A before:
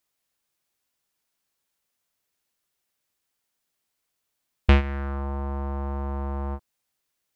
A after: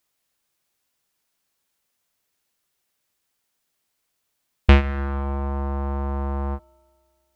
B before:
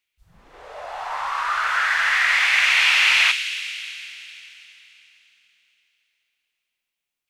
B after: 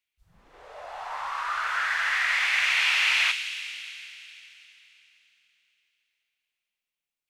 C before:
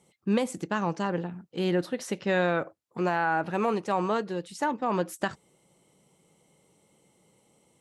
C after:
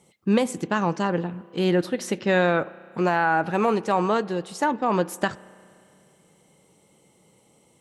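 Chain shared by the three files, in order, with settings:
spring reverb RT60 2.4 s, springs 32 ms, chirp 45 ms, DRR 20 dB
loudness normalisation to −24 LKFS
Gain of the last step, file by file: +4.0, −6.5, +5.0 decibels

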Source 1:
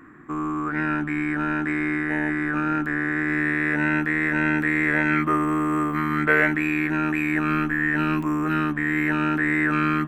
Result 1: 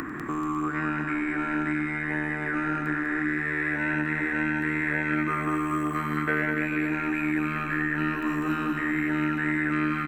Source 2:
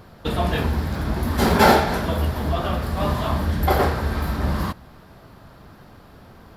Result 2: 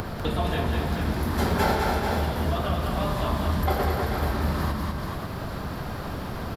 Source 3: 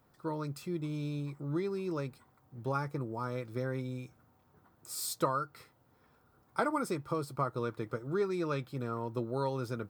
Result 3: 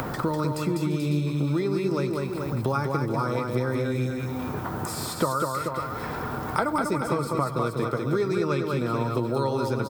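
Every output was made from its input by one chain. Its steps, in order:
upward compression, threshold −29 dBFS
on a send: multi-tap delay 95/197/341/434/548 ms −17.5/−4.5/−19.5/−10/−15 dB
on the sum: multiband upward and downward compressor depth 70%
loudness normalisation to −27 LKFS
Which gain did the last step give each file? −7.0, −5.0, +6.5 decibels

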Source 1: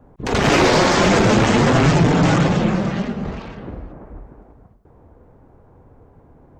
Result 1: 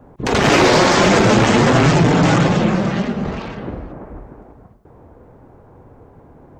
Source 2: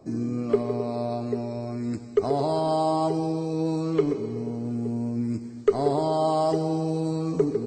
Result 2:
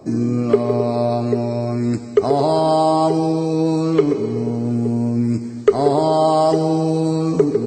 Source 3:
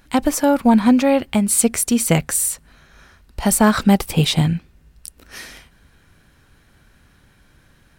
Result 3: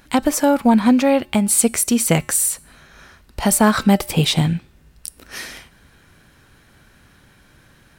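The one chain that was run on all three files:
low-shelf EQ 81 Hz −7 dB
in parallel at −2 dB: downward compressor, threshold −25 dBFS
on the sum: tuned comb filter 120 Hz, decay 0.58 s, harmonics odd, mix 40%
normalise the peak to −1.5 dBFS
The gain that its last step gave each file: +5.0, +9.5, +3.0 decibels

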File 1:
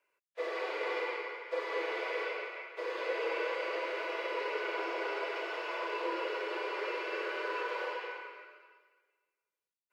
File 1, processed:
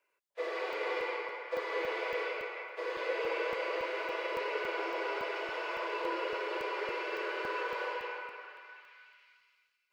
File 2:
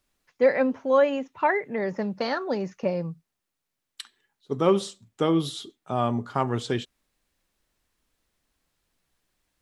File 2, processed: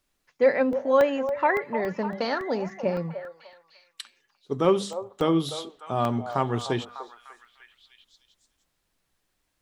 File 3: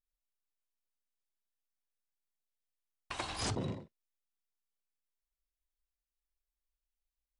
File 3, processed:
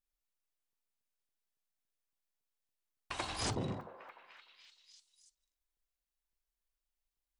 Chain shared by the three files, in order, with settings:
mains-hum notches 50/100/150/200/250 Hz
echo through a band-pass that steps 299 ms, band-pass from 690 Hz, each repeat 0.7 octaves, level −8 dB
regular buffer underruns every 0.28 s, samples 64, zero, from 0:00.73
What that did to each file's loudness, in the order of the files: +0.5, 0.0, −0.5 LU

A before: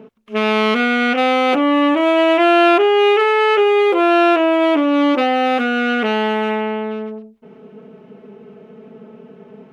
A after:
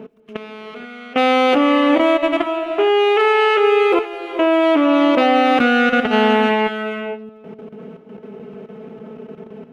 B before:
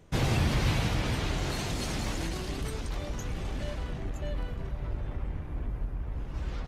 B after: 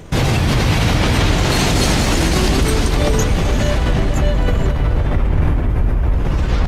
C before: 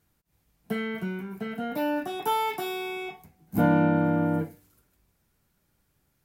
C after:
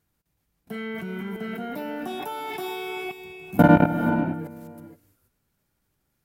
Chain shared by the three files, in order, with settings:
brickwall limiter −12 dBFS
output level in coarse steps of 21 dB
reverb whose tail is shaped and stops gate 500 ms rising, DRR 7.5 dB
normalise the peak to −3 dBFS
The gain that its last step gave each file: +6.5, +27.5, +9.0 decibels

